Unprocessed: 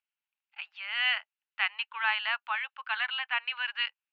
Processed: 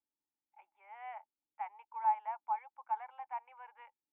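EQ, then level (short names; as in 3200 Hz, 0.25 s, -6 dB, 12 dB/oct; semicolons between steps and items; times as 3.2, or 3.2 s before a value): dynamic EQ 860 Hz, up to +3 dB, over -42 dBFS, Q 1.4; vocal tract filter u; +14.0 dB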